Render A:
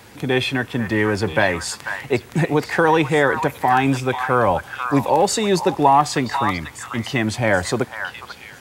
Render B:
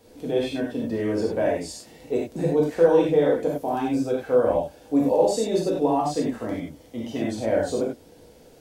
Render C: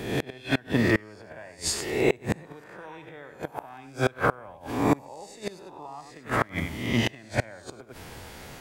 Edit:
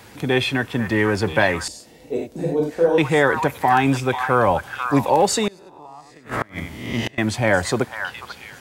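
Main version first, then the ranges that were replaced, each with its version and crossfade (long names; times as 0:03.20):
A
0:01.68–0:02.98: punch in from B
0:05.48–0:07.18: punch in from C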